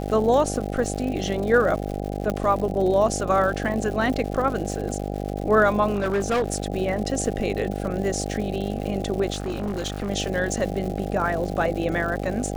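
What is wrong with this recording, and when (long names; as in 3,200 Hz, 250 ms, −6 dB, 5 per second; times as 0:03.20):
mains buzz 50 Hz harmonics 16 −29 dBFS
surface crackle 190 per second −31 dBFS
0:02.30: click −13 dBFS
0:05.94–0:06.66: clipping −18.5 dBFS
0:09.32–0:10.10: clipping −23 dBFS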